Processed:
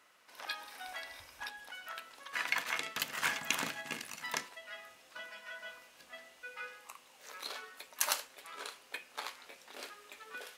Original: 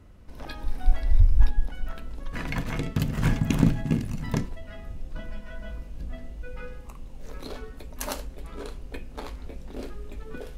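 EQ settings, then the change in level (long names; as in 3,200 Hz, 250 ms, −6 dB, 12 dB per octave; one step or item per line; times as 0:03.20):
high-pass filter 1,200 Hz 12 dB per octave
+3.5 dB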